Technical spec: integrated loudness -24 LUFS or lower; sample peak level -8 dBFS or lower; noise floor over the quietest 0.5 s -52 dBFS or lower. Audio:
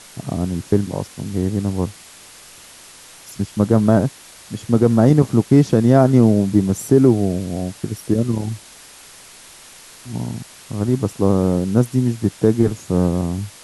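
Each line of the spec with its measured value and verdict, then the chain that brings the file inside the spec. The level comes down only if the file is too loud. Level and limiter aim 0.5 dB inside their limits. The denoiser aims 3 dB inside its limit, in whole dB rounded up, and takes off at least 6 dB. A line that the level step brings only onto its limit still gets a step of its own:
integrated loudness -18.0 LUFS: fail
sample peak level -2.0 dBFS: fail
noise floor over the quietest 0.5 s -43 dBFS: fail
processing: denoiser 6 dB, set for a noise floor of -43 dBFS; gain -6.5 dB

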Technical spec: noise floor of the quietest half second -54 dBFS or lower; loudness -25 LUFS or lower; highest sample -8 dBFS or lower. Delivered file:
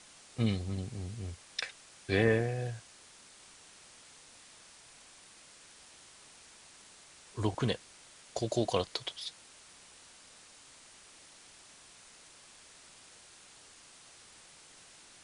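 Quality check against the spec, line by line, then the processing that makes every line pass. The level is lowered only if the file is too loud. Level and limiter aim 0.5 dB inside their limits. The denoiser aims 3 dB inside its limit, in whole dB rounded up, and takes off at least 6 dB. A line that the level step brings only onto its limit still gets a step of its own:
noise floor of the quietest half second -57 dBFS: OK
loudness -34.5 LUFS: OK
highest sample -13.5 dBFS: OK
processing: none

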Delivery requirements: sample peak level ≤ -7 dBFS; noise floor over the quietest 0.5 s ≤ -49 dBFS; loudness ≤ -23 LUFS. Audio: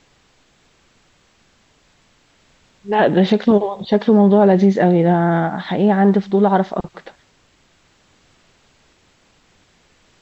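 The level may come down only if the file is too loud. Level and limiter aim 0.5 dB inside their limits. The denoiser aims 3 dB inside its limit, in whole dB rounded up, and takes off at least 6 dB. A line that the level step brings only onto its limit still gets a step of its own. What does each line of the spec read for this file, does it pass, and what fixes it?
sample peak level -3.5 dBFS: fail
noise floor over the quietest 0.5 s -57 dBFS: OK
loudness -15.5 LUFS: fail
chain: gain -8 dB

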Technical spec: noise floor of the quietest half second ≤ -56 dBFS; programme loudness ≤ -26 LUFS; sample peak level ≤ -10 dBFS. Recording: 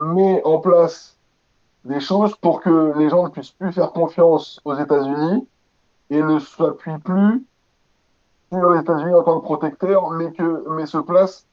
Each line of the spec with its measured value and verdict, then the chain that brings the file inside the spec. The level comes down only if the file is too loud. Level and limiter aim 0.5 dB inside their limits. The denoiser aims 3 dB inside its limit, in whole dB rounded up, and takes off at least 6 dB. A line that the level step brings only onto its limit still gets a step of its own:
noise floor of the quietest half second -64 dBFS: OK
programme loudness -18.0 LUFS: fail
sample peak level -3.0 dBFS: fail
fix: gain -8.5 dB

